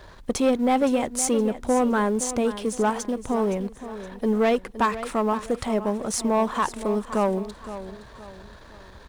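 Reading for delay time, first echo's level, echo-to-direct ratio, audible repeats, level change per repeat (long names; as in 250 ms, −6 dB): 517 ms, −13.0 dB, −12.5 dB, 3, −8.5 dB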